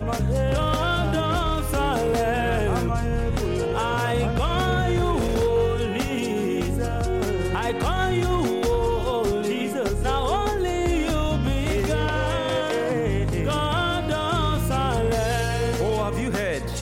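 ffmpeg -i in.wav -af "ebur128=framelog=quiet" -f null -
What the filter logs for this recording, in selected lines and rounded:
Integrated loudness:
  I:         -23.7 LUFS
  Threshold: -33.7 LUFS
Loudness range:
  LRA:         0.7 LU
  Threshold: -43.7 LUFS
  LRA low:   -24.0 LUFS
  LRA high:  -23.3 LUFS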